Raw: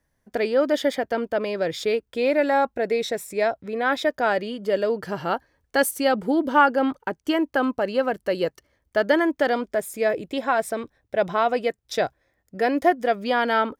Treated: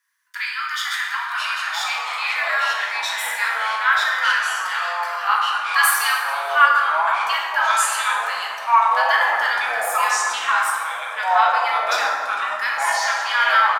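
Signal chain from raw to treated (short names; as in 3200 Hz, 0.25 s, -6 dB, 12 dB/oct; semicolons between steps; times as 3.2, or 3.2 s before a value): steep high-pass 1000 Hz 96 dB/oct; echoes that change speed 0.418 s, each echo -4 st, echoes 3; frequency-shifting echo 0.147 s, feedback 59%, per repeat -90 Hz, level -19 dB; plate-style reverb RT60 1.8 s, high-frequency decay 0.5×, DRR -2.5 dB; gain +4.5 dB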